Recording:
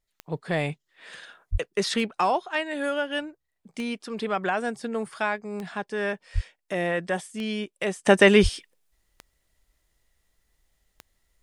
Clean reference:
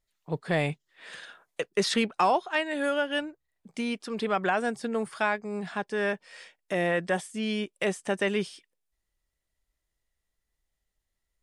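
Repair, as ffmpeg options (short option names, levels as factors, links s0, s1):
-filter_complex "[0:a]adeclick=t=4,asplit=3[s0][s1][s2];[s0]afade=t=out:st=1.51:d=0.02[s3];[s1]highpass=f=140:w=0.5412,highpass=f=140:w=1.3066,afade=t=in:st=1.51:d=0.02,afade=t=out:st=1.63:d=0.02[s4];[s2]afade=t=in:st=1.63:d=0.02[s5];[s3][s4][s5]amix=inputs=3:normalize=0,asplit=3[s6][s7][s8];[s6]afade=t=out:st=6.34:d=0.02[s9];[s7]highpass=f=140:w=0.5412,highpass=f=140:w=1.3066,afade=t=in:st=6.34:d=0.02,afade=t=out:st=6.46:d=0.02[s10];[s8]afade=t=in:st=6.46:d=0.02[s11];[s9][s10][s11]amix=inputs=3:normalize=0,asplit=3[s12][s13][s14];[s12]afade=t=out:st=8.42:d=0.02[s15];[s13]highpass=f=140:w=0.5412,highpass=f=140:w=1.3066,afade=t=in:st=8.42:d=0.02,afade=t=out:st=8.54:d=0.02[s16];[s14]afade=t=in:st=8.54:d=0.02[s17];[s15][s16][s17]amix=inputs=3:normalize=0,asetnsamples=n=441:p=0,asendcmd='8.06 volume volume -11.5dB',volume=1"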